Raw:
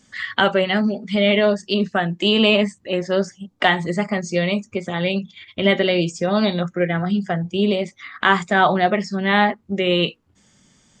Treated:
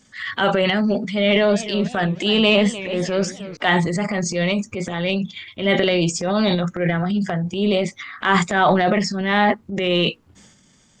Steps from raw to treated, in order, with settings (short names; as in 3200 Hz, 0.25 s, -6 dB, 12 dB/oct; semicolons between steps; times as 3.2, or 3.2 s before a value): transient shaper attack -6 dB, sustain +9 dB; 1.06–3.57 warbling echo 0.308 s, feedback 45%, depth 188 cents, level -15 dB